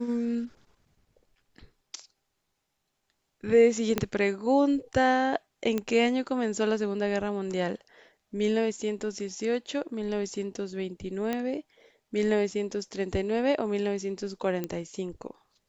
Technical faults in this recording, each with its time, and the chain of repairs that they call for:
3.98 pop -11 dBFS
5.78 pop -16 dBFS
11.33 pop -16 dBFS
14.64 pop -18 dBFS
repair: de-click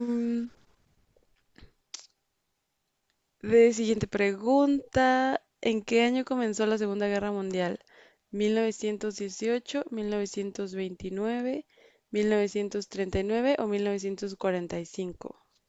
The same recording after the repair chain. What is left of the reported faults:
3.98 pop

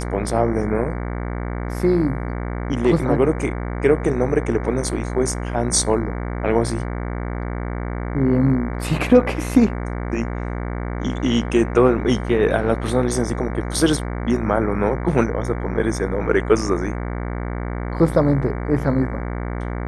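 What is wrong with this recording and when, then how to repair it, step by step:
buzz 60 Hz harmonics 38 -26 dBFS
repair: de-hum 60 Hz, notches 38

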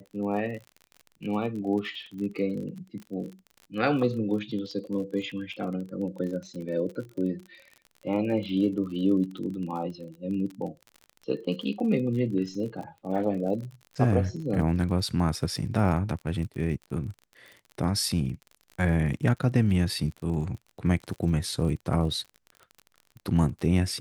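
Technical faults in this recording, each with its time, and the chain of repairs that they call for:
crackle 36/s -36 dBFS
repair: de-click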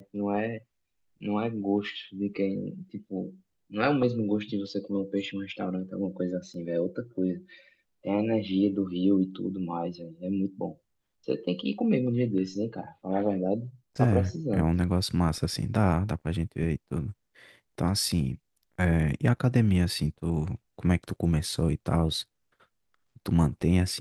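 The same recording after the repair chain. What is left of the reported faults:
none

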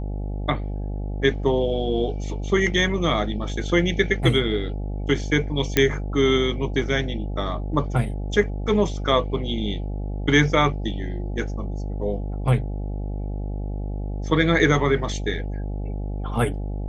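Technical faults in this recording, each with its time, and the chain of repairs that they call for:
buzz 50 Hz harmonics 17 -28 dBFS
5.77 pop -3 dBFS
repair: de-click; de-hum 50 Hz, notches 17

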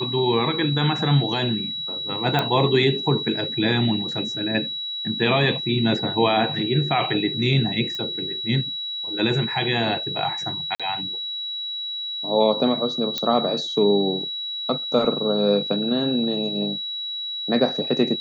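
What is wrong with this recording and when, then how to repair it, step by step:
tone 3900 Hz -27 dBFS
2.39 pop -9 dBFS
7.95 pop -17 dBFS
10.75–10.8 gap 46 ms
13.18 pop -9 dBFS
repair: de-click; notch 3900 Hz, Q 30; interpolate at 10.75, 46 ms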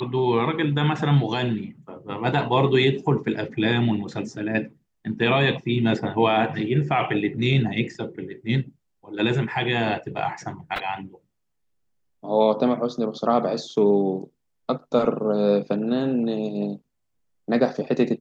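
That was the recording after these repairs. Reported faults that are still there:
none

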